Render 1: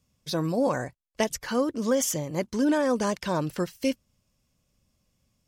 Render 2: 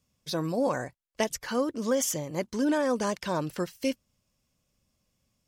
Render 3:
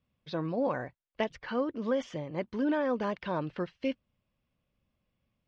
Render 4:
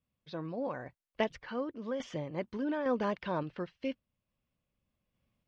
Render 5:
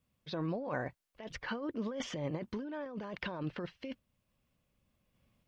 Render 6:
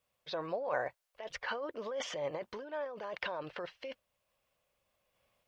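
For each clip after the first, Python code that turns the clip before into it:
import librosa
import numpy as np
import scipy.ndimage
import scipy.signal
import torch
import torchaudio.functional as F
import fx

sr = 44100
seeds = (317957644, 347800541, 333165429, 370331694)

y1 = fx.low_shelf(x, sr, hz=200.0, db=-4.0)
y1 = F.gain(torch.from_numpy(y1), -1.5).numpy()
y2 = scipy.signal.sosfilt(scipy.signal.butter(4, 3400.0, 'lowpass', fs=sr, output='sos'), y1)
y2 = F.gain(torch.from_numpy(y2), -3.0).numpy()
y3 = fx.tremolo_random(y2, sr, seeds[0], hz=3.5, depth_pct=55)
y4 = fx.over_compress(y3, sr, threshold_db=-40.0, ratio=-1.0)
y4 = F.gain(torch.from_numpy(y4), 1.5).numpy()
y5 = fx.low_shelf_res(y4, sr, hz=370.0, db=-13.0, q=1.5)
y5 = F.gain(torch.from_numpy(y5), 2.0).numpy()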